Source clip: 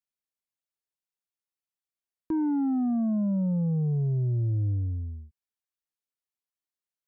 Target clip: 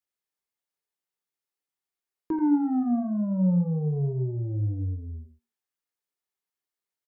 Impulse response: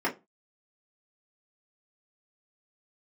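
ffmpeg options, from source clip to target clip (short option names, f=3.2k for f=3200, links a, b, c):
-filter_complex "[0:a]aecho=1:1:85:0.355,asplit=2[a][b];[1:a]atrim=start_sample=2205[c];[b][c]afir=irnorm=-1:irlink=0,volume=-14dB[d];[a][d]amix=inputs=2:normalize=0"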